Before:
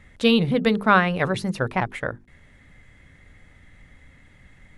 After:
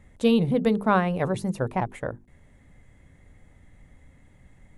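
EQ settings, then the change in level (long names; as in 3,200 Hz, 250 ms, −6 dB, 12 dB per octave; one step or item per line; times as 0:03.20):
flat-topped bell 2,600 Hz −8.5 dB 2.4 octaves
−1.5 dB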